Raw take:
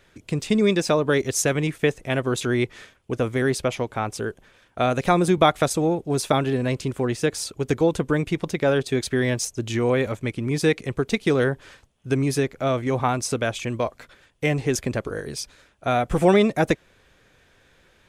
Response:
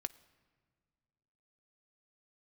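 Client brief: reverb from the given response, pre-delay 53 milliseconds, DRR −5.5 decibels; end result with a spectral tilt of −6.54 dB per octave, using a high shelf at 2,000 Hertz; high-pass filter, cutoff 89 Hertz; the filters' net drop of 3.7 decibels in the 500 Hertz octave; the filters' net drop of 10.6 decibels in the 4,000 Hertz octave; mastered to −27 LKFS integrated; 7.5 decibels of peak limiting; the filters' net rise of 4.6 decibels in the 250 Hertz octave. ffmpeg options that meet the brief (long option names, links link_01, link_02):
-filter_complex "[0:a]highpass=89,equalizer=frequency=250:width_type=o:gain=8.5,equalizer=frequency=500:width_type=o:gain=-7.5,highshelf=frequency=2000:gain=-7.5,equalizer=frequency=4000:width_type=o:gain=-6,alimiter=limit=-13dB:level=0:latency=1,asplit=2[link_01][link_02];[1:a]atrim=start_sample=2205,adelay=53[link_03];[link_02][link_03]afir=irnorm=-1:irlink=0,volume=7.5dB[link_04];[link_01][link_04]amix=inputs=2:normalize=0,volume=-9dB"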